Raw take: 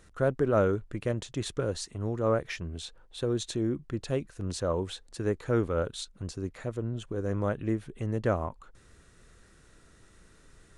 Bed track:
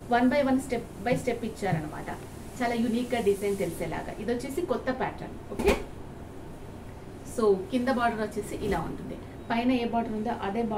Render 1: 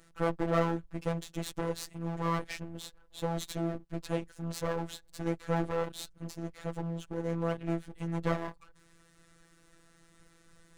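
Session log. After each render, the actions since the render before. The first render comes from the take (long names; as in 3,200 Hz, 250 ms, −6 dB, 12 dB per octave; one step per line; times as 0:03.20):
lower of the sound and its delayed copy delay 9.8 ms
phases set to zero 167 Hz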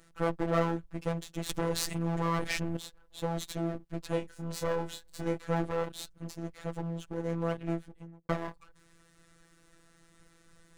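0:01.49–0:02.77: envelope flattener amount 70%
0:04.10–0:05.44: double-tracking delay 26 ms −5.5 dB
0:07.63–0:08.29: fade out and dull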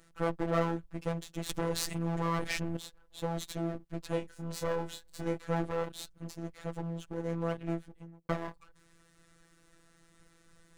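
level −1.5 dB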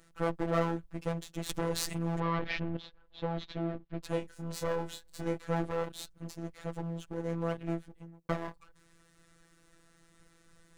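0:02.20–0:04.03: inverse Chebyshev low-pass filter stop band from 9,300 Hz, stop band 50 dB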